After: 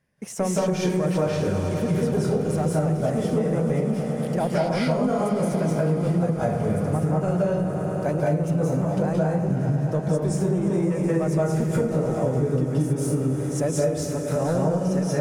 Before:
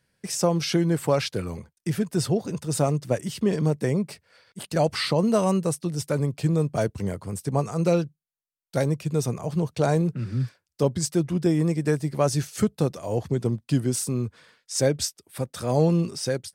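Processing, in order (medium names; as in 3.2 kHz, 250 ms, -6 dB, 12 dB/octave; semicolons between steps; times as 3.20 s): saturation -12.5 dBFS, distortion -20 dB; peaking EQ 3.7 kHz -8.5 dB 1.4 oct; speed mistake 44.1 kHz file played as 48 kHz; treble shelf 8 kHz -10.5 dB; echo with a slow build-up 106 ms, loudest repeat 5, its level -17 dB; reverberation RT60 0.60 s, pre-delay 167 ms, DRR -6.5 dB; compression, threshold -19 dBFS, peak gain reduction 9.5 dB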